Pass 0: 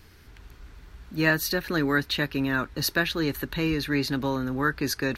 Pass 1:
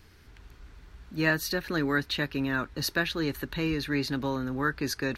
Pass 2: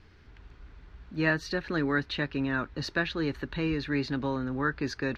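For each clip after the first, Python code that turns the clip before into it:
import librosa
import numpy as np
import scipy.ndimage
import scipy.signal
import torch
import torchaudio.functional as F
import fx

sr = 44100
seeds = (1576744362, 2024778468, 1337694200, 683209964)

y1 = fx.peak_eq(x, sr, hz=14000.0, db=-5.0, octaves=0.67)
y1 = y1 * librosa.db_to_amplitude(-3.0)
y2 = fx.air_absorb(y1, sr, metres=150.0)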